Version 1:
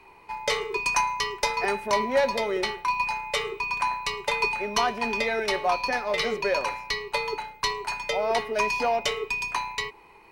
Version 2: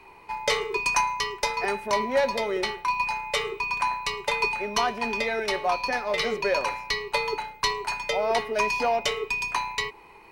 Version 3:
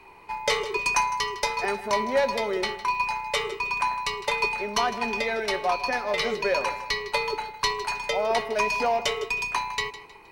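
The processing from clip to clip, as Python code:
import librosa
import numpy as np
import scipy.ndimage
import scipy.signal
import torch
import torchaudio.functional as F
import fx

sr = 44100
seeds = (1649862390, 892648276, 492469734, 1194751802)

y1 = fx.rider(x, sr, range_db=4, speed_s=2.0)
y2 = fx.echo_feedback(y1, sr, ms=157, feedback_pct=33, wet_db=-15.0)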